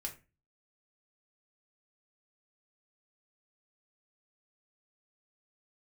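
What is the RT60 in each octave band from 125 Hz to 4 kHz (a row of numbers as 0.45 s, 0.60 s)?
0.55 s, 0.40 s, 0.30 s, 0.25 s, 0.30 s, 0.20 s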